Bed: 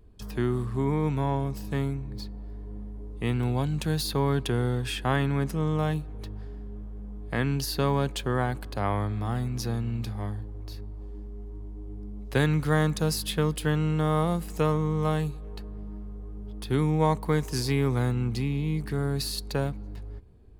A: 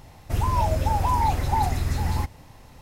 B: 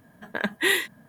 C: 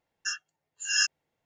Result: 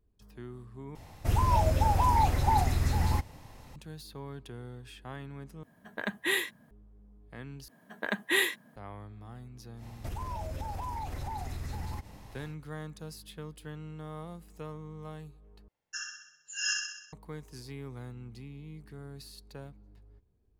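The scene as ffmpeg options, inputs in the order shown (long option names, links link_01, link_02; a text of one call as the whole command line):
ffmpeg -i bed.wav -i cue0.wav -i cue1.wav -i cue2.wav -filter_complex "[1:a]asplit=2[link_01][link_02];[2:a]asplit=2[link_03][link_04];[0:a]volume=-17.5dB[link_05];[link_04]highpass=170[link_06];[link_02]acompressor=threshold=-31dB:ratio=6:attack=3.2:release=140:knee=1:detection=peak[link_07];[3:a]aecho=1:1:64|128|192|256|320|384|448|512:0.668|0.388|0.225|0.13|0.0756|0.0439|0.0254|0.0148[link_08];[link_05]asplit=5[link_09][link_10][link_11][link_12][link_13];[link_09]atrim=end=0.954[link_14];[link_01]atrim=end=2.81,asetpts=PTS-STARTPTS,volume=-2.5dB[link_15];[link_10]atrim=start=3.756:end=5.634[link_16];[link_03]atrim=end=1.08,asetpts=PTS-STARTPTS,volume=-7dB[link_17];[link_11]atrim=start=6.706:end=7.684[link_18];[link_06]atrim=end=1.08,asetpts=PTS-STARTPTS,volume=-4.5dB[link_19];[link_12]atrim=start=8.756:end=15.684[link_20];[link_08]atrim=end=1.45,asetpts=PTS-STARTPTS,volume=-7.5dB[link_21];[link_13]atrim=start=17.126[link_22];[link_07]atrim=end=2.81,asetpts=PTS-STARTPTS,volume=-3dB,afade=type=in:duration=0.1,afade=type=out:start_time=2.71:duration=0.1,adelay=9750[link_23];[link_14][link_15]acrossfade=duration=0.004:curve1=hsin:curve2=hsin[link_24];[link_24][link_16]acrossfade=duration=0.004:curve1=hsin:curve2=hsin[link_25];[link_25][link_17]acrossfade=duration=0.004:curve1=hsin:curve2=hsin[link_26];[link_26][link_18]acrossfade=duration=0.004:curve1=hsin:curve2=hsin[link_27];[link_27][link_19]acrossfade=duration=0.004:curve1=hsin:curve2=hsin[link_28];[link_28][link_20]acrossfade=duration=0.004:curve1=hsin:curve2=hsin[link_29];[link_29][link_21]acrossfade=duration=0.004:curve1=hsin:curve2=hsin[link_30];[link_30][link_22]acrossfade=duration=0.004:curve1=hsin:curve2=hsin[link_31];[link_31][link_23]amix=inputs=2:normalize=0" out.wav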